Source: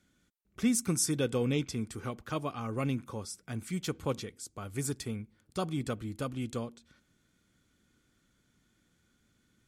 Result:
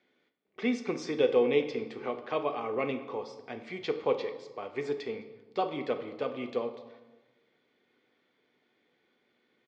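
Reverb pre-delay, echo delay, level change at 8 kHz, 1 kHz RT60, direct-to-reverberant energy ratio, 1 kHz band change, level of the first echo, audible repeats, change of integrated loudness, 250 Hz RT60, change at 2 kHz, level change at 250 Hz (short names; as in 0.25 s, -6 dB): 8 ms, 0.211 s, under -20 dB, 1.1 s, 7.0 dB, +5.5 dB, -23.0 dB, 1, +2.0 dB, 1.4 s, +4.0 dB, -2.5 dB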